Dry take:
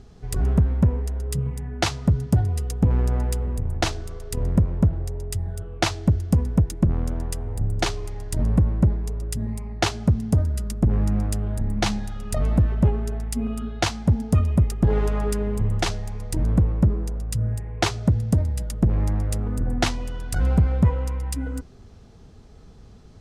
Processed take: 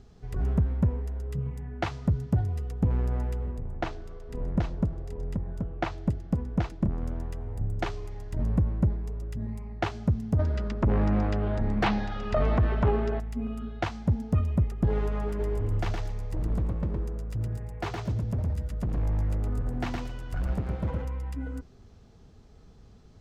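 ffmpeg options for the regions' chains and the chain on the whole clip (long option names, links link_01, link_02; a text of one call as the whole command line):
ffmpeg -i in.wav -filter_complex "[0:a]asettb=1/sr,asplit=3[link_01][link_02][link_03];[link_01]atrim=end=3.514[link_04];[link_02]atrim=start=3.51:end=7.02,asetpts=PTS-STARTPTS,afade=type=in:duration=0.004:curve=qsin,afade=type=out:start_time=3.506:duration=0.004:curve=qsin,lowpass=frequency=2400:poles=1,equalizer=frequency=86:width_type=o:width=0.9:gain=-7,aecho=1:1:779:0.473,atrim=end_sample=154791[link_05];[link_03]atrim=start=7.016[link_06];[link_04][link_05]acrossfade=duration=0.004:curve1=hsin:curve2=qsin[link_07];[link_07][link_06]acrossfade=duration=0.004:curve1=qsin:curve2=hsin,asettb=1/sr,asplit=3[link_08][link_09][link_10];[link_08]atrim=end=10.394[link_11];[link_09]atrim=start=10.39:end=13.2,asetpts=PTS-STARTPTS,afade=type=in:duration=0.004:curve=qsin,afade=type=out:start_time=2.806:duration=0.004:curve=qsin,lowpass=frequency=5200:width=0.5412,lowpass=frequency=5200:width=1.3066,bass=frequency=250:gain=-10,treble=frequency=4000:gain=0,aeval=exprs='0.299*sin(PI/2*2.82*val(0)/0.299)':channel_layout=same[link_12];[link_10]atrim=start=13.196[link_13];[link_11][link_12]acrossfade=duration=0.004:curve1=hsin:curve2=qsin[link_14];[link_14][link_13]acrossfade=duration=0.004:curve1=qsin:curve2=hsin,asettb=1/sr,asplit=3[link_15][link_16][link_17];[link_15]atrim=end=15.284[link_18];[link_16]atrim=start=15.28:end=21.05,asetpts=PTS-STARTPTS,afade=type=in:duration=0.004:curve=qsin,afade=type=out:start_time=5.766:duration=0.004:curve=qsin,asoftclip=type=hard:threshold=-20dB,aecho=1:1:114|228|342:0.631|0.101|0.0162,atrim=end_sample=254457[link_19];[link_17]atrim=start=21.046[link_20];[link_18][link_19]acrossfade=duration=0.004:curve1=hsin:curve2=qsin[link_21];[link_21][link_20]acrossfade=duration=0.004:curve1=qsin:curve2=hsin,acrossover=split=2700[link_22][link_23];[link_23]acompressor=threshold=-44dB:ratio=4:attack=1:release=60[link_24];[link_22][link_24]amix=inputs=2:normalize=0,equalizer=frequency=9400:width=3.9:gain=-7,volume=-6dB" out.wav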